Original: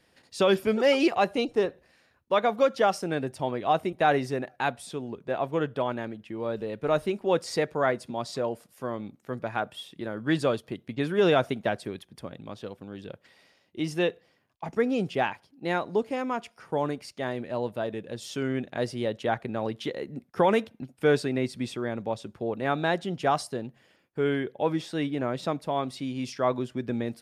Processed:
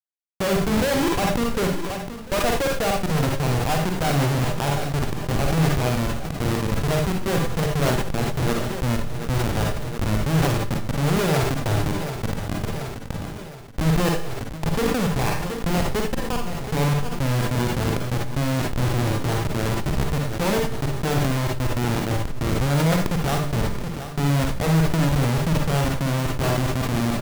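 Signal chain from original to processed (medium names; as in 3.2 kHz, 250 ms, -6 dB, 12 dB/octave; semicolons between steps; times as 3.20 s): level-controlled noise filter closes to 520 Hz, open at -20 dBFS; resonant low shelf 190 Hz +11.5 dB, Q 1.5; in parallel at -1 dB: compression 16:1, threshold -34 dBFS, peak gain reduction 20 dB; on the sum: Schmitt trigger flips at -23 dBFS; on a send: feedback delay 725 ms, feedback 52%, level -18 dB; on the sum: Schroeder reverb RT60 0.3 s, DRR 3 dB; decay stretcher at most 27 dB/s; trim +3 dB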